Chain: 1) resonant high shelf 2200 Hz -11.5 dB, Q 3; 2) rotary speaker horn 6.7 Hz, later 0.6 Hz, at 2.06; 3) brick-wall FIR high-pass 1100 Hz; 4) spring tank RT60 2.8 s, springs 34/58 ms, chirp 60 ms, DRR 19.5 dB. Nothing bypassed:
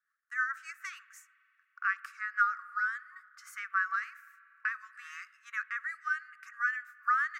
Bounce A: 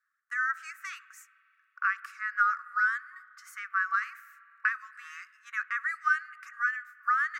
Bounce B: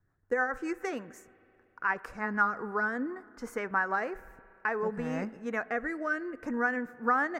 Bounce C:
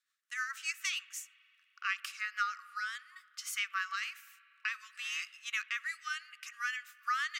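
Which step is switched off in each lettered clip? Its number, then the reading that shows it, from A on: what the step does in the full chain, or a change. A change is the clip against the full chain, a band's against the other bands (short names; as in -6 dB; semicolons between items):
2, loudness change +3.5 LU; 3, 1 kHz band +2.5 dB; 1, 4 kHz band +21.0 dB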